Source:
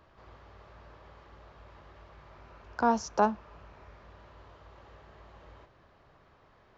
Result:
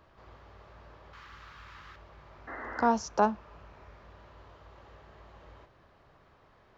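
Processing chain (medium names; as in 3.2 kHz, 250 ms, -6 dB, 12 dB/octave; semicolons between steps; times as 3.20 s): 1.13–1.96 s: FFT filter 150 Hz 0 dB, 670 Hz -7 dB, 1.3 kHz +10 dB; 2.47–2.88 s: painted sound noise 220–2100 Hz -41 dBFS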